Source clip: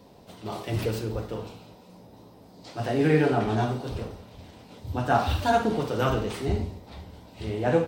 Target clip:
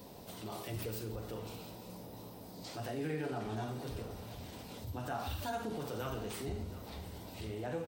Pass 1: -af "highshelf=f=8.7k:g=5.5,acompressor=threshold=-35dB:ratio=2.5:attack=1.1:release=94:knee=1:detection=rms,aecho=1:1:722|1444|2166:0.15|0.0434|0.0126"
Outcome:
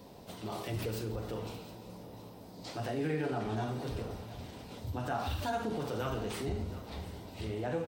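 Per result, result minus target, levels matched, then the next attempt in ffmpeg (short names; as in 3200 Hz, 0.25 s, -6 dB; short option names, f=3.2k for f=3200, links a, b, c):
8000 Hz band -4.5 dB; compressor: peak gain reduction -4 dB
-af "highshelf=f=8.7k:g=15.5,acompressor=threshold=-35dB:ratio=2.5:attack=1.1:release=94:knee=1:detection=rms,aecho=1:1:722|1444|2166:0.15|0.0434|0.0126"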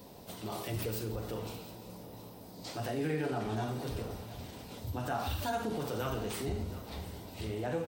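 compressor: peak gain reduction -4 dB
-af "highshelf=f=8.7k:g=15.5,acompressor=threshold=-42dB:ratio=2.5:attack=1.1:release=94:knee=1:detection=rms,aecho=1:1:722|1444|2166:0.15|0.0434|0.0126"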